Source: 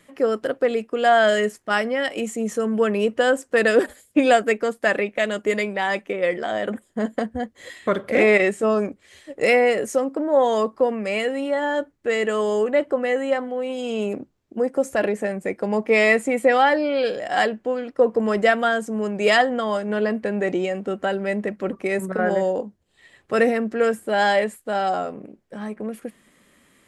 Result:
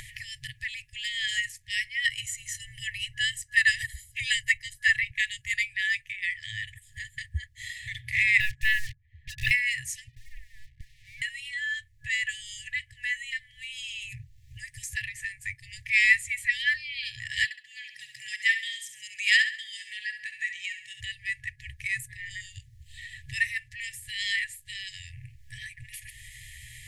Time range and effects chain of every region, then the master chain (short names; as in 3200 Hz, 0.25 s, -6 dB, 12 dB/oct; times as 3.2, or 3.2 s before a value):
2.05–5.11 comb 1 ms, depth 67% + dispersion lows, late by 47 ms, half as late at 300 Hz
8.4–9.51 synth low-pass 600 Hz, resonance Q 6.7 + sample leveller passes 2
10.08–11.22 vocal tract filter u + notches 60/120/180/240/300/360/420/480 Hz + sample leveller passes 1
17.44–21.01 HPF 260 Hz 24 dB/oct + feedback echo 67 ms, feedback 37%, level -9.5 dB
whole clip: FFT band-reject 130–1700 Hz; low shelf 230 Hz +11 dB; upward compressor, threshold -33 dBFS